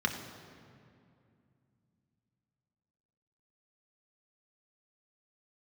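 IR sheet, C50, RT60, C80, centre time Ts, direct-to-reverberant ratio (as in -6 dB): 7.0 dB, 2.4 s, 8.0 dB, 35 ms, 3.0 dB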